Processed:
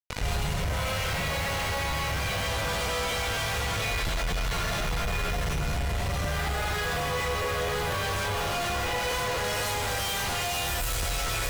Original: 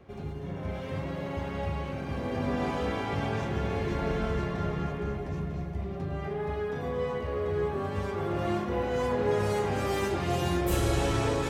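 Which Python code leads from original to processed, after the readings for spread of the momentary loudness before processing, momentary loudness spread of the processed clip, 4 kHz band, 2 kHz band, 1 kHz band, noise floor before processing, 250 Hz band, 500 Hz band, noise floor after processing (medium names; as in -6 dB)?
8 LU, 2 LU, +12.0 dB, +9.0 dB, +3.5 dB, -37 dBFS, -6.5 dB, -3.0 dB, -29 dBFS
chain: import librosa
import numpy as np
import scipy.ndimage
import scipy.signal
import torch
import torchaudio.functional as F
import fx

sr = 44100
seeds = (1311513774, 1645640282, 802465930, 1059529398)

y = fx.tone_stack(x, sr, knobs='10-0-10')
y = y + 10.0 ** (-9.5 / 20.0) * np.pad(y, (int(634 * sr / 1000.0), 0))[:len(y)]
y = fx.rev_freeverb(y, sr, rt60_s=0.46, hf_ratio=0.7, predelay_ms=95, drr_db=-10.0)
y = fx.fuzz(y, sr, gain_db=51.0, gate_db=-49.0)
y = fx.low_shelf(y, sr, hz=150.0, db=5.5)
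y = fx.rider(y, sr, range_db=10, speed_s=0.5)
y = fx.comb_fb(y, sr, f0_hz=490.0, decay_s=0.41, harmonics='all', damping=0.0, mix_pct=80)
y = fx.buffer_crackle(y, sr, first_s=0.7, period_s=0.24, block=512, kind='repeat')
y = fx.env_flatten(y, sr, amount_pct=50)
y = y * librosa.db_to_amplitude(-5.5)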